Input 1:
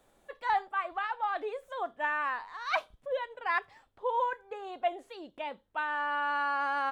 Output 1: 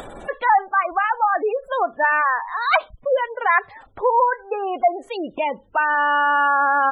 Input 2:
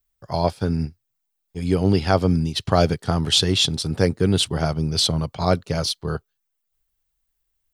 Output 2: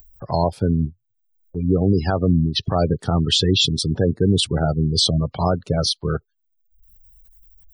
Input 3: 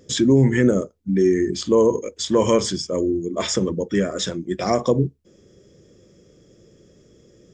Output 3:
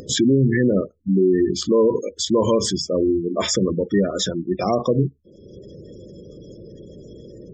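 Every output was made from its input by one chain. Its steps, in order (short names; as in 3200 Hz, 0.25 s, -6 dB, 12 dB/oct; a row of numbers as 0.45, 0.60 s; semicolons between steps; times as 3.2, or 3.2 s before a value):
spectral gate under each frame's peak -20 dB strong; in parallel at -1 dB: upward compressor, threshold -24 dBFS; on the sum: limiter -6 dBFS; match loudness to -20 LUFS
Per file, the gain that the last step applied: +6.5, -2.0, -3.0 dB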